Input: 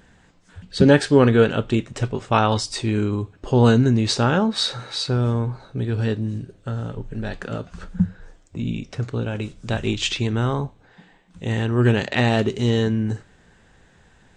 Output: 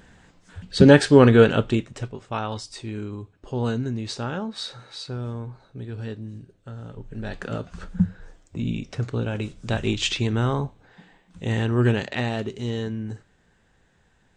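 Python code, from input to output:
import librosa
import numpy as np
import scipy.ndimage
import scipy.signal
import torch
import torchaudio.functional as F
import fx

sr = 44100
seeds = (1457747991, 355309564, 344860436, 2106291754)

y = fx.gain(x, sr, db=fx.line((1.59, 1.5), (2.17, -10.5), (6.76, -10.5), (7.45, -1.0), (11.73, -1.0), (12.34, -8.5)))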